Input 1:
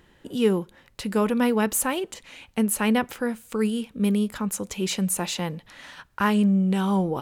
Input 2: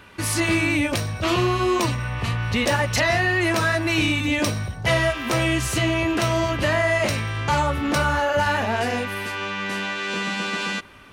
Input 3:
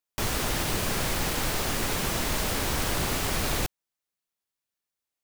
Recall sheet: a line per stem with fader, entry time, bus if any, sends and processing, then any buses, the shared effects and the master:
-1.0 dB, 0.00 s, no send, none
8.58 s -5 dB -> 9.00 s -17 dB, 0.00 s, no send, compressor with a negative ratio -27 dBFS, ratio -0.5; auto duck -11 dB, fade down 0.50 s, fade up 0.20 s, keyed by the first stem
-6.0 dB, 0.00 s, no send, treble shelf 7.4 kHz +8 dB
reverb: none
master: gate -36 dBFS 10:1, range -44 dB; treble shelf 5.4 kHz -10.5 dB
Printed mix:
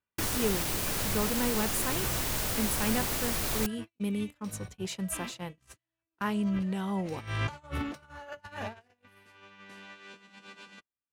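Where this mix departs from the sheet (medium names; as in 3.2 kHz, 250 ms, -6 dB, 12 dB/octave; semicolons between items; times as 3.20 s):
stem 1 -1.0 dB -> -9.5 dB; master: missing treble shelf 5.4 kHz -10.5 dB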